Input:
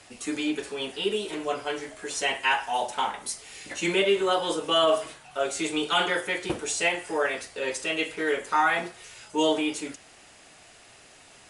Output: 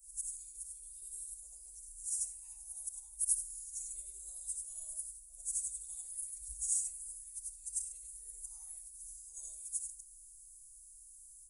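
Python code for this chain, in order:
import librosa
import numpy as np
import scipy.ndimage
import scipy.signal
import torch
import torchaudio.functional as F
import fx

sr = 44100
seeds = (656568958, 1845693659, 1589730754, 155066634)

y = fx.frame_reverse(x, sr, frame_ms=210.0)
y = scipy.signal.sosfilt(scipy.signal.cheby2(4, 60, [130.0, 3300.0], 'bandstop', fs=sr, output='sos'), y)
y = fx.spec_erase(y, sr, start_s=7.16, length_s=0.72, low_hz=230.0, high_hz=1700.0)
y = y * 10.0 ** (11.5 / 20.0)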